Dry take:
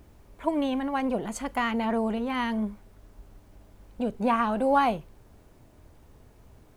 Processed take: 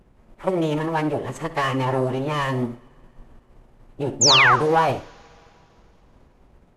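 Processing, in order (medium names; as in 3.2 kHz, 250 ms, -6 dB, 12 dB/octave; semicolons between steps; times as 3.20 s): median filter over 9 samples; hum notches 60/120/180/240/300/360/420/480/540 Hz; dynamic bell 120 Hz, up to -6 dB, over -47 dBFS, Q 0.97; waveshaping leveller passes 1; formant-preserving pitch shift -9.5 st; in parallel at -9 dB: one-sided clip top -19 dBFS; on the sum: painted sound fall, 4.21–4.56 s, 940–7400 Hz -15 dBFS; on a send at -12 dB: reverberation, pre-delay 55 ms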